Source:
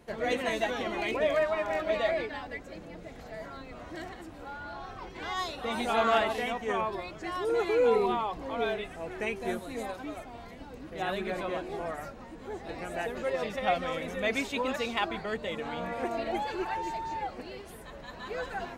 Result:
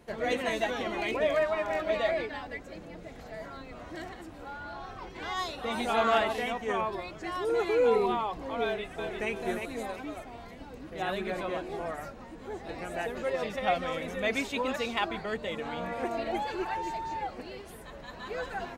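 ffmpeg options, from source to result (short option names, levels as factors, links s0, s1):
-filter_complex "[0:a]asplit=2[s0][s1];[s1]afade=t=in:st=8.63:d=0.01,afade=t=out:st=9.3:d=0.01,aecho=0:1:350|700|1050|1400:0.530884|0.159265|0.0477796|0.0143339[s2];[s0][s2]amix=inputs=2:normalize=0"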